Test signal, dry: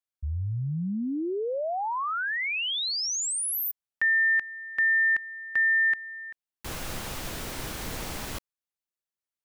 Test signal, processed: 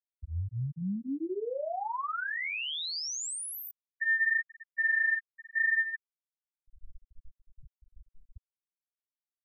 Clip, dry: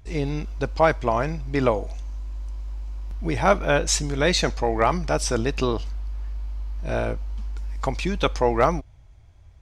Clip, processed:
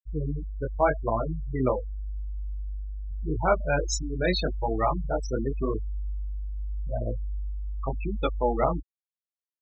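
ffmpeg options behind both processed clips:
-filter_complex "[0:a]asplit=2[a][b];[b]adelay=97,lowpass=f=1.4k:p=1,volume=-20.5dB,asplit=2[c][d];[d]adelay=97,lowpass=f=1.4k:p=1,volume=0.4,asplit=2[e][f];[f]adelay=97,lowpass=f=1.4k:p=1,volume=0.4[g];[a][c][e][g]amix=inputs=4:normalize=0,flanger=delay=18:depth=5.8:speed=0.85,afftfilt=real='re*gte(hypot(re,im),0.126)':imag='im*gte(hypot(re,im),0.126)':win_size=1024:overlap=0.75,volume=-1.5dB"

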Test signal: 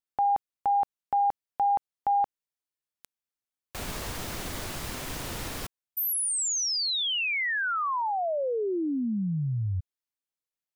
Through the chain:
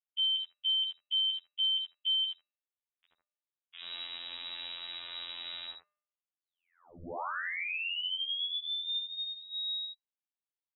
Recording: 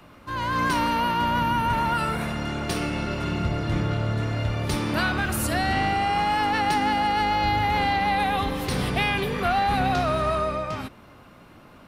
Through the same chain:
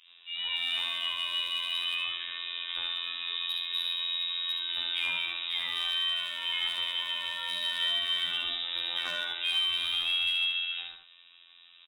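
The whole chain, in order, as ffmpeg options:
-filter_complex "[0:a]acrossover=split=210|2100[a][b][c];[a]adelay=40[d];[c]adelay=80[e];[d][b][e]amix=inputs=3:normalize=0,lowpass=f=3.3k:t=q:w=0.5098,lowpass=f=3.3k:t=q:w=0.6013,lowpass=f=3.3k:t=q:w=0.9,lowpass=f=3.3k:t=q:w=2.563,afreqshift=-3900,volume=18dB,asoftclip=hard,volume=-18dB,bandreject=f=203.6:t=h:w=4,bandreject=f=407.2:t=h:w=4,bandreject=f=610.8:t=h:w=4,bandreject=f=814.4:t=h:w=4,bandreject=f=1.018k:t=h:w=4,bandreject=f=1.2216k:t=h:w=4,bandreject=f=1.4252k:t=h:w=4,bandreject=f=1.6288k:t=h:w=4,bandreject=f=1.8324k:t=h:w=4,bandreject=f=2.036k:t=h:w=4,bandreject=f=2.2396k:t=h:w=4,bandreject=f=2.4432k:t=h:w=4,bandreject=f=2.6468k:t=h:w=4,bandreject=f=2.8504k:t=h:w=4,afftfilt=real='hypot(re,im)*cos(PI*b)':imag='0':win_size=2048:overlap=0.75,asplit=2[f][g];[g]aecho=0:1:73:0.447[h];[f][h]amix=inputs=2:normalize=0,volume=-3.5dB"

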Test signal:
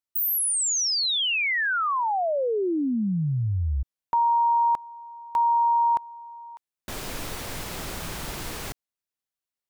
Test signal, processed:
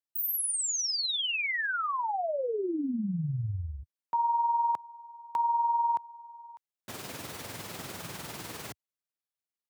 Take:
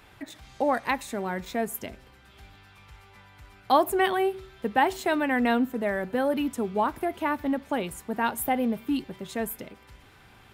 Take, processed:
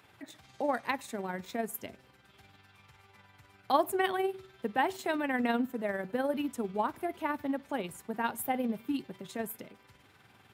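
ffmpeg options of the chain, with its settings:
-af "highpass=f=88:w=0.5412,highpass=f=88:w=1.3066,tremolo=f=20:d=0.47,volume=-4dB"

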